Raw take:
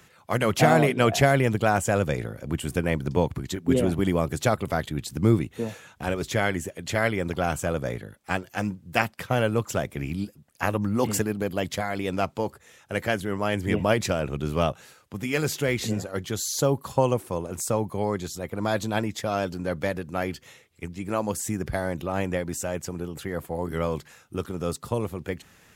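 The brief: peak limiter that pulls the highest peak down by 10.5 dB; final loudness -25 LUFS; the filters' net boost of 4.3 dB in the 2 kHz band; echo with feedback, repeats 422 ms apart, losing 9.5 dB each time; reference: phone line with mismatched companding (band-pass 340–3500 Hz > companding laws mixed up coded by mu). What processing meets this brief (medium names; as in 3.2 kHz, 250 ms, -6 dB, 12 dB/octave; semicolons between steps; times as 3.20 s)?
peaking EQ 2 kHz +6 dB; peak limiter -12 dBFS; band-pass 340–3500 Hz; feedback delay 422 ms, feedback 33%, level -9.5 dB; companding laws mixed up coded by mu; trim +3.5 dB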